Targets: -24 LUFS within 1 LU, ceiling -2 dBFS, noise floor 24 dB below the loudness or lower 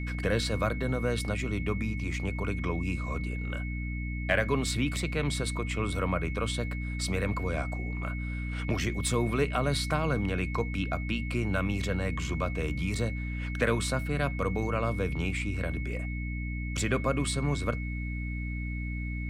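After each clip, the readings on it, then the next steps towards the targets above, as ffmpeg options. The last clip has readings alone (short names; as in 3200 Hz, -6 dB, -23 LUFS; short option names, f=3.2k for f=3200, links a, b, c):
hum 60 Hz; harmonics up to 300 Hz; hum level -31 dBFS; steady tone 2200 Hz; tone level -41 dBFS; loudness -31.0 LUFS; peak -12.0 dBFS; loudness target -24.0 LUFS
-> -af "bandreject=f=60:t=h:w=4,bandreject=f=120:t=h:w=4,bandreject=f=180:t=h:w=4,bandreject=f=240:t=h:w=4,bandreject=f=300:t=h:w=4"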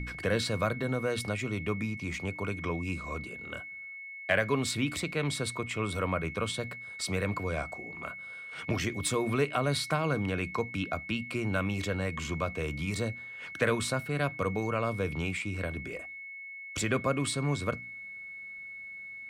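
hum none; steady tone 2200 Hz; tone level -41 dBFS
-> -af "bandreject=f=2.2k:w=30"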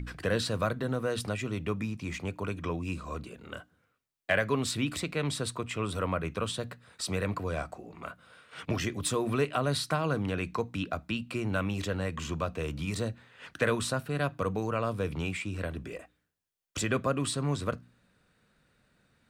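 steady tone none; loudness -32.5 LUFS; peak -13.0 dBFS; loudness target -24.0 LUFS
-> -af "volume=8.5dB"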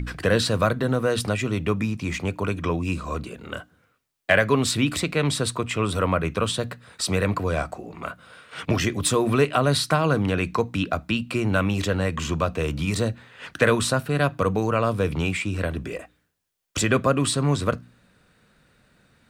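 loudness -24.0 LUFS; peak -4.5 dBFS; noise floor -66 dBFS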